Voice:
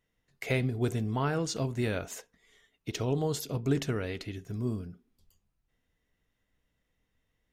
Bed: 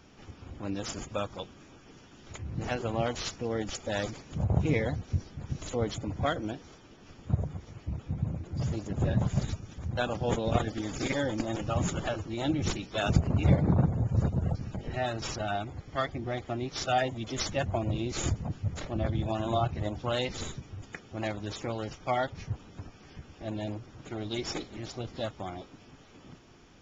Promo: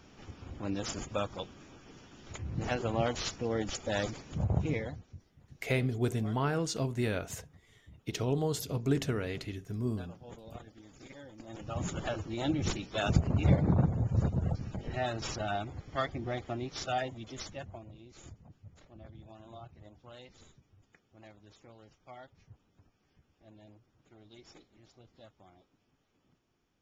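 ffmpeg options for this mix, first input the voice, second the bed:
-filter_complex "[0:a]adelay=5200,volume=0.891[s0];[1:a]volume=7.5,afade=t=out:st=4.29:d=0.86:silence=0.105925,afade=t=in:st=11.37:d=0.81:silence=0.125893,afade=t=out:st=16.33:d=1.58:silence=0.112202[s1];[s0][s1]amix=inputs=2:normalize=0"

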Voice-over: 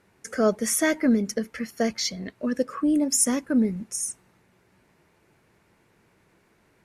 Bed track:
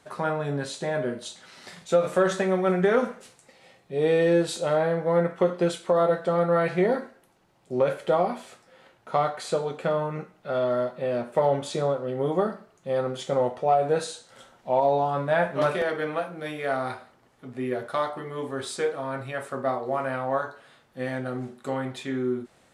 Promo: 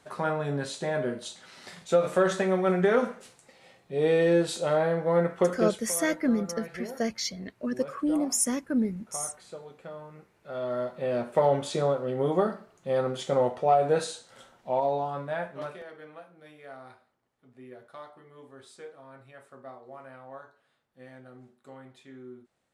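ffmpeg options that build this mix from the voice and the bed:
-filter_complex "[0:a]adelay=5200,volume=0.596[s0];[1:a]volume=5.31,afade=t=out:st=5.55:d=0.34:silence=0.177828,afade=t=in:st=10.32:d=0.91:silence=0.158489,afade=t=out:st=14.03:d=1.8:silence=0.133352[s1];[s0][s1]amix=inputs=2:normalize=0"

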